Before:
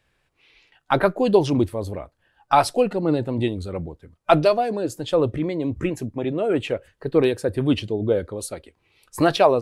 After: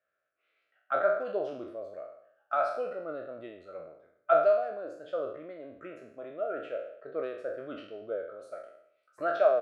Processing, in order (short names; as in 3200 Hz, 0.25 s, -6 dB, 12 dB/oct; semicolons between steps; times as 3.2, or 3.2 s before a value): spectral trails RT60 0.69 s; double band-pass 920 Hz, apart 1.1 oct; speakerphone echo 0.16 s, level -27 dB; gain -5.5 dB